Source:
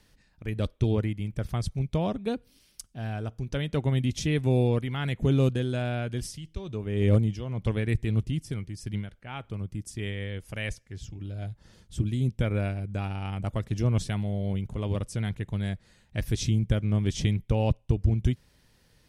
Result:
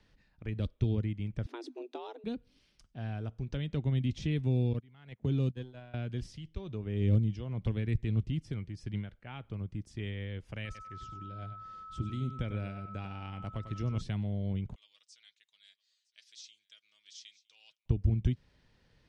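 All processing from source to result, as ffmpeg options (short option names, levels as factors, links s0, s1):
-filter_complex "[0:a]asettb=1/sr,asplit=3[s0][s1][s2];[s0]atrim=end=1.464[s3];[s1]atrim=start=1.46:end=2.24,asetpts=PTS-STARTPTS,afade=t=in:d=0.004:c=qsin,afade=t=out:st=0.776:d=0.004:c=qsin,bass=f=250:g=-9,treble=f=4000:g=-3,afreqshift=230[s4];[s2]atrim=start=2.236[s5];[s3][s4]acrossfade=d=0.004:c1=hsin:c2=qsin[s6];[s6][s5]acrossfade=d=0.004:c1=qsin:c2=hsin,asettb=1/sr,asplit=3[s7][s8][s9];[s7]atrim=end=4.734[s10];[s8]atrim=start=4.73:end=5.94,asetpts=PTS-STARTPTS,afade=t=in:d=0.004:c=qsin,afade=t=out:st=1.206:d=0.004:c=qsin,aeval=exprs='if(lt(val(0),0),0.708*val(0),val(0))':c=same,highpass=82,agate=range=0.1:threshold=0.0355:ratio=16:release=100:detection=peak[s11];[s9]atrim=start=5.936[s12];[s10][s11]acrossfade=d=0.004:c1=hsin:c2=qsin[s13];[s13][s12]acrossfade=d=0.004:c1=qsin:c2=hsin,asettb=1/sr,asplit=3[s14][s15][s16];[s14]atrim=end=10.654[s17];[s15]atrim=start=10.65:end=14.01,asetpts=PTS-STARTPTS,afade=t=in:d=0.004:c=qsin,afade=t=out:st=3.356:d=0.004:c=qsin,lowshelf=f=380:g=-5,aeval=exprs='val(0)+0.01*sin(2*PI*1300*n/s)':c=same,aecho=1:1:96|192:0.266|0.0479,atrim=end_sample=148176[s18];[s16]atrim=start=14.006[s19];[s17][s18]acrossfade=d=0.004:c1=hsin:c2=qsin[s20];[s20][s19]acrossfade=d=0.004:c1=qsin:c2=hsin,asettb=1/sr,asplit=3[s21][s22][s23];[s21]atrim=end=14.754[s24];[s22]atrim=start=14.75:end=17.86,asetpts=PTS-STARTPTS,afade=t=in:d=0.004:c=qsin,afade=t=out:st=3.106:d=0.004:c=qsin,asuperpass=centerf=5900:order=4:qfactor=1.3,aecho=1:1:6.3:0.42,atrim=end_sample=137151,aecho=1:1:961:0.0794,atrim=end_sample=137151[s25];[s23]atrim=start=17.856[s26];[s24][s25]acrossfade=d=0.004:c1=hsin:c2=qsin[s27];[s27][s26]acrossfade=d=0.004:c1=qsin:c2=hsin,deesser=0.8,lowpass=4100,acrossover=split=320|3000[s28][s29][s30];[s29]acompressor=threshold=0.00891:ratio=4[s31];[s28][s31][s30]amix=inputs=3:normalize=0,volume=0.631"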